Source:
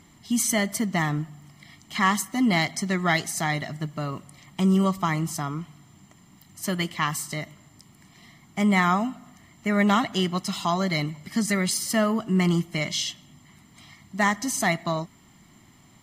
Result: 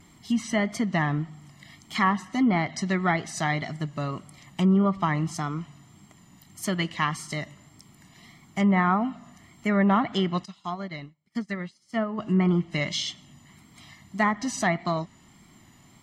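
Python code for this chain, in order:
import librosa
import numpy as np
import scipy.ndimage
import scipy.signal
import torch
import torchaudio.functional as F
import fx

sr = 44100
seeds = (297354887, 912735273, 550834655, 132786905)

y = fx.vibrato(x, sr, rate_hz=1.7, depth_cents=57.0)
y = fx.env_lowpass_down(y, sr, base_hz=1600.0, full_db=-17.5)
y = fx.upward_expand(y, sr, threshold_db=-41.0, expansion=2.5, at=(10.44, 12.17), fade=0.02)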